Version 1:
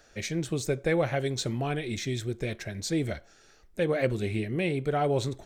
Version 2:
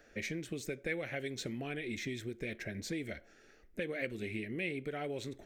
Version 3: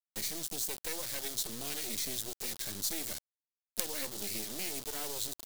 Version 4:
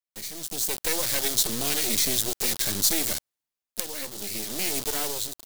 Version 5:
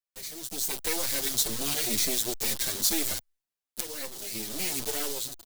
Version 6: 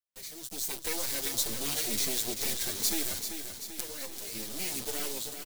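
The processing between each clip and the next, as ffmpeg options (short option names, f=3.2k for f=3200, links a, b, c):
-filter_complex "[0:a]equalizer=f=125:t=o:w=1:g=-3,equalizer=f=250:t=o:w=1:g=7,equalizer=f=500:t=o:w=1:g=4,equalizer=f=1k:t=o:w=1:g=-6,equalizer=f=2k:t=o:w=1:g=7,equalizer=f=4k:t=o:w=1:g=-5,equalizer=f=8k:t=o:w=1:g=-6,acrossover=split=1900[a][b];[a]acompressor=threshold=-33dB:ratio=6[c];[c][b]amix=inputs=2:normalize=0,volume=-4.5dB"
-filter_complex "[0:a]acrossover=split=190|1100|7900[a][b][c][d];[c]alimiter=level_in=9.5dB:limit=-24dB:level=0:latency=1:release=273,volume=-9.5dB[e];[a][b][e][d]amix=inputs=4:normalize=0,acrusher=bits=5:dc=4:mix=0:aa=0.000001,aexciter=amount=6:drive=3.5:freq=3.4k"
-af "dynaudnorm=f=180:g=7:m=13.5dB,volume=-1dB"
-filter_complex "[0:a]asplit=2[a][b];[b]adelay=6.9,afreqshift=-2[c];[a][c]amix=inputs=2:normalize=1"
-af "aecho=1:1:388|776|1164|1552|1940|2328|2716:0.398|0.227|0.129|0.0737|0.042|0.024|0.0137,volume=-4dB"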